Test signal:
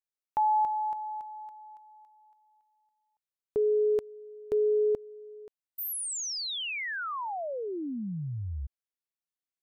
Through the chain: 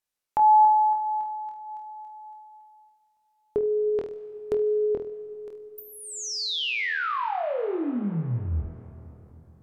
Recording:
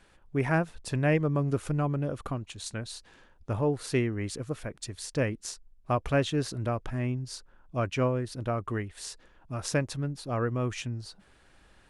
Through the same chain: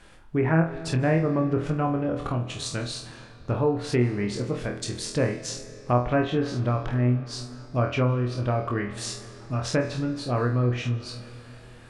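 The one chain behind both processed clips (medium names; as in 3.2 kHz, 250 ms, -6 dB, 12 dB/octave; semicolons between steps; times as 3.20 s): flutter echo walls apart 4.2 m, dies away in 0.34 s; in parallel at +1.5 dB: compression, threshold -34 dBFS; on the sum: low-pass that closes with the level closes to 1.7 kHz, closed at -18.5 dBFS; algorithmic reverb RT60 3.9 s, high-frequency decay 0.6×, pre-delay 110 ms, DRR 14.5 dB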